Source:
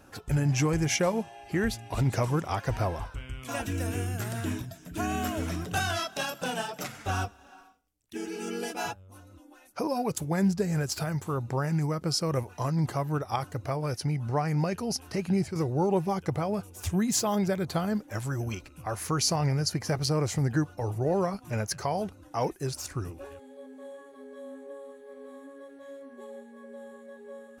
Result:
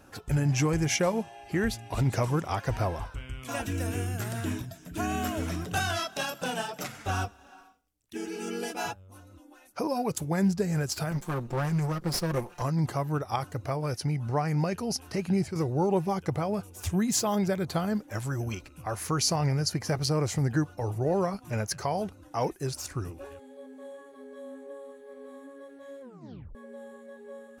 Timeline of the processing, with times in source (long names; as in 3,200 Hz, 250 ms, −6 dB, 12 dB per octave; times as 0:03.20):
0:11.11–0:12.62: lower of the sound and its delayed copy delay 5.7 ms
0:26.01: tape stop 0.54 s